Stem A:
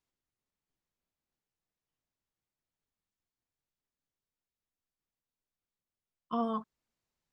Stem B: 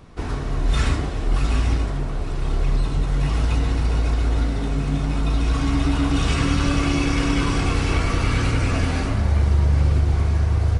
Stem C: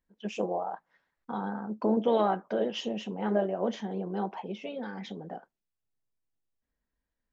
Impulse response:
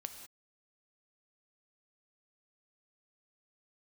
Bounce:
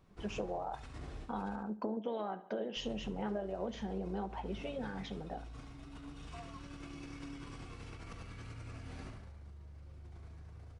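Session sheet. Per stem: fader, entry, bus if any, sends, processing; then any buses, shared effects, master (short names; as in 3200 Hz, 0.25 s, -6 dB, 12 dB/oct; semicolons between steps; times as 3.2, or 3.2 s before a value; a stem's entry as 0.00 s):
-11.5 dB, 0.00 s, no send, no echo send, vocal tract filter a
-20.0 dB, 0.00 s, muted 1.56–2.76, no send, echo send -8.5 dB, negative-ratio compressor -24 dBFS, ratio -1; flange 0.3 Hz, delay 5.3 ms, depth 4.9 ms, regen +79%
-3.0 dB, 0.00 s, no send, echo send -19.5 dB, dry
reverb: off
echo: feedback echo 71 ms, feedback 36%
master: compressor 10:1, threshold -34 dBFS, peak gain reduction 11 dB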